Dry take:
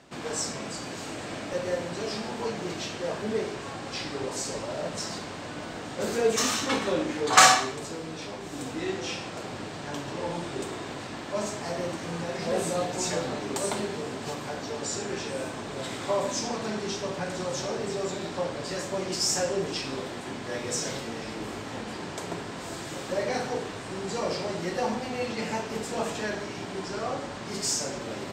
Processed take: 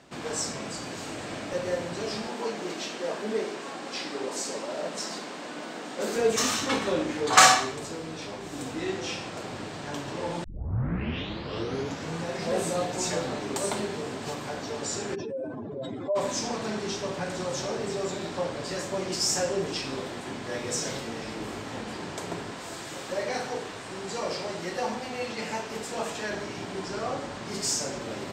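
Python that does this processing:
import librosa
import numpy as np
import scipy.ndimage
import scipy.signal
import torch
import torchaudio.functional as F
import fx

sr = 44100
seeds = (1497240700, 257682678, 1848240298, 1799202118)

y = fx.highpass(x, sr, hz=200.0, slope=24, at=(2.27, 6.16))
y = fx.spec_expand(y, sr, power=2.6, at=(15.14, 16.15), fade=0.02)
y = fx.low_shelf(y, sr, hz=380.0, db=-6.0, at=(22.54, 26.31))
y = fx.edit(y, sr, fx.tape_start(start_s=10.44, length_s=1.76), tone=tone)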